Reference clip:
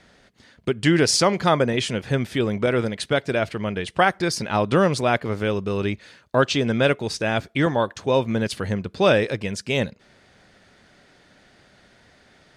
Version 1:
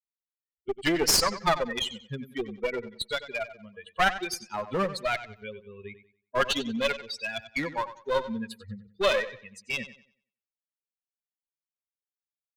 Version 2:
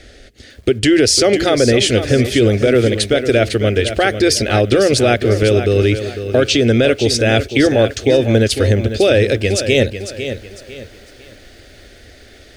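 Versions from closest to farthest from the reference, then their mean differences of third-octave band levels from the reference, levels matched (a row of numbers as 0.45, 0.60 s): 2, 1; 6.0, 10.0 dB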